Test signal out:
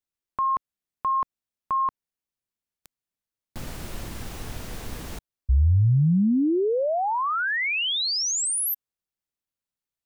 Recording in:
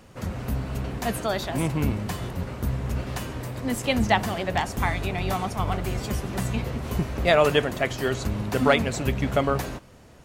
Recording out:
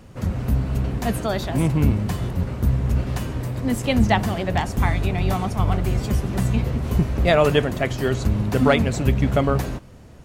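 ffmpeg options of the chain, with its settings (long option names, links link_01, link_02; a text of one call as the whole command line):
ffmpeg -i in.wav -af "lowshelf=frequency=310:gain=8.5" out.wav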